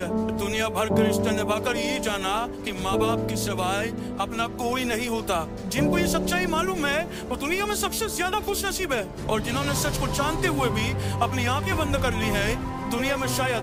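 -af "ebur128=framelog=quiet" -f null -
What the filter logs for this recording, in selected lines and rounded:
Integrated loudness:
  I:         -25.3 LUFS
  Threshold: -35.2 LUFS
Loudness range:
  LRA:         1.6 LU
  Threshold: -45.4 LUFS
  LRA low:   -26.3 LUFS
  LRA high:  -24.7 LUFS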